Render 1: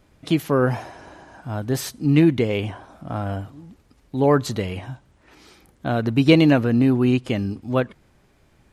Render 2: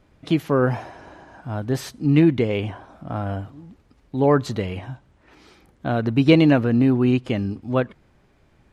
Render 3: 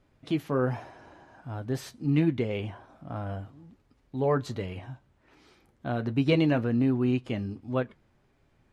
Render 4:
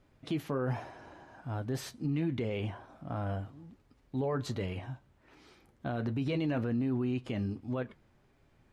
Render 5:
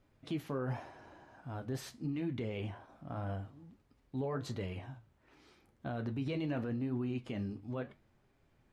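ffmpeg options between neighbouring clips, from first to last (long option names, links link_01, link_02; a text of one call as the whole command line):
ffmpeg -i in.wav -af "highshelf=frequency=6200:gain=-11" out.wav
ffmpeg -i in.wav -af "flanger=delay=7:depth=2:regen=-60:speed=1.3:shape=triangular,volume=-4dB" out.wav
ffmpeg -i in.wav -af "alimiter=level_in=0.5dB:limit=-24dB:level=0:latency=1:release=42,volume=-0.5dB" out.wav
ffmpeg -i in.wav -af "flanger=delay=9:depth=6.1:regen=-74:speed=0.86:shape=sinusoidal" out.wav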